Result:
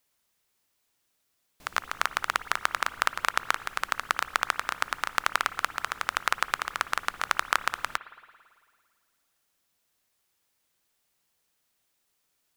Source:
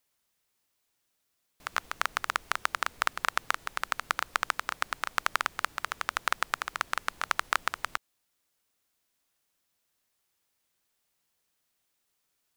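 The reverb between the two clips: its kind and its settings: spring tank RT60 1.9 s, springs 55 ms, chirp 70 ms, DRR 14.5 dB; trim +2.5 dB

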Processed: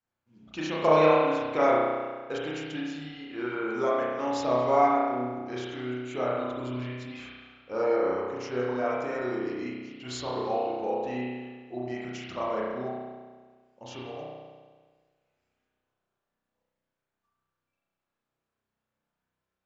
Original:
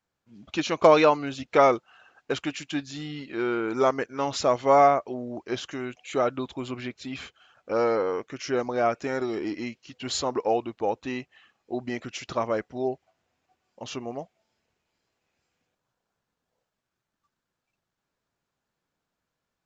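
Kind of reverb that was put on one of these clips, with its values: spring tank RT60 1.5 s, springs 32 ms, chirp 65 ms, DRR -6 dB; trim -9.5 dB

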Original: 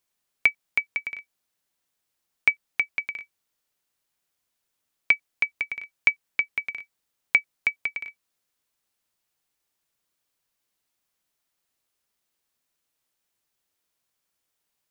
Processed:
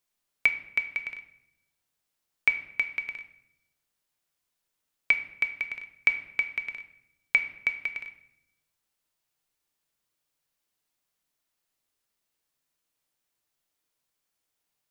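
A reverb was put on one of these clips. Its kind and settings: simulated room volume 220 m³, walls mixed, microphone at 0.44 m; trim -3 dB

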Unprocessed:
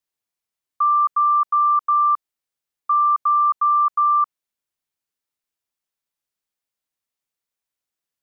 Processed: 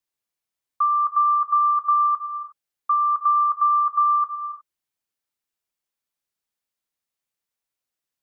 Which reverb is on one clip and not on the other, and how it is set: gated-style reverb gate 380 ms flat, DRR 8 dB; trim -1 dB

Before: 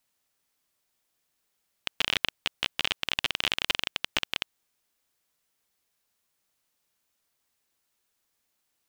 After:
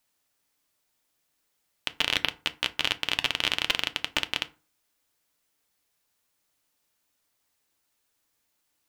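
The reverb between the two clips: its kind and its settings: FDN reverb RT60 0.34 s, low-frequency decay 1.2×, high-frequency decay 0.6×, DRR 10 dB; trim +1.5 dB

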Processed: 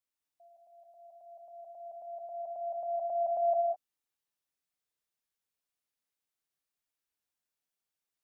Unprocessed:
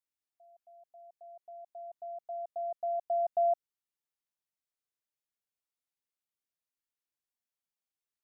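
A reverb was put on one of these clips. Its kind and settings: gated-style reverb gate 230 ms rising, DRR 0.5 dB

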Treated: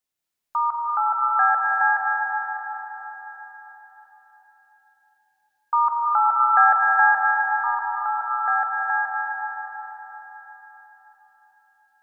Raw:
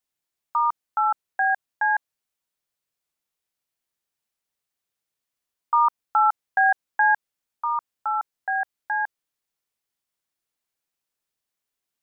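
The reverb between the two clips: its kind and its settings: algorithmic reverb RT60 4.5 s, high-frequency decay 1×, pre-delay 115 ms, DRR -2.5 dB; trim -1 dB

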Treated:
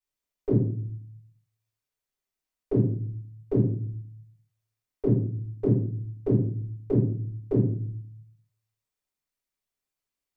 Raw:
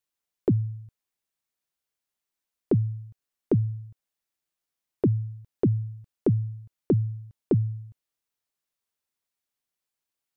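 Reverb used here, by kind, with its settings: simulated room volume 57 m³, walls mixed, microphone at 3.7 m; trim -16 dB

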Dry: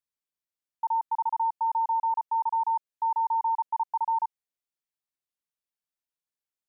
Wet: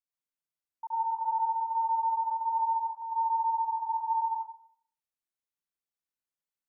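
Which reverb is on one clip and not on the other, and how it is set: plate-style reverb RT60 0.57 s, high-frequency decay 0.55×, pre-delay 85 ms, DRR -6 dB; trim -10.5 dB

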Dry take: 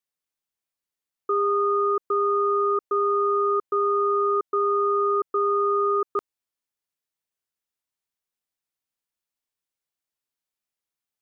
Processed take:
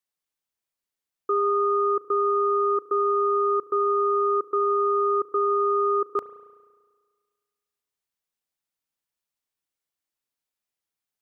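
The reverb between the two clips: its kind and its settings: spring tank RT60 1.6 s, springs 34 ms, chirp 55 ms, DRR 14 dB

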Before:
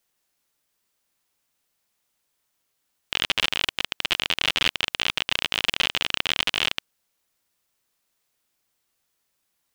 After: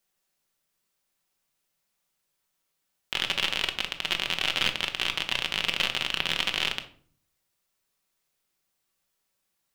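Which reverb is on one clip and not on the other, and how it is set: simulated room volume 540 m³, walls furnished, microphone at 1.1 m; trim -4 dB

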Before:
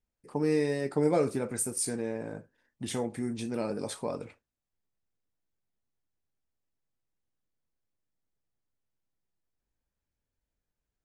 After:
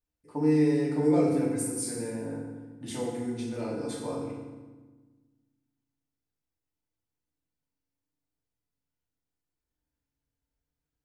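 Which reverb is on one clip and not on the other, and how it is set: FDN reverb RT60 1.3 s, low-frequency decay 1.5×, high-frequency decay 0.75×, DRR -5 dB; trim -7.5 dB

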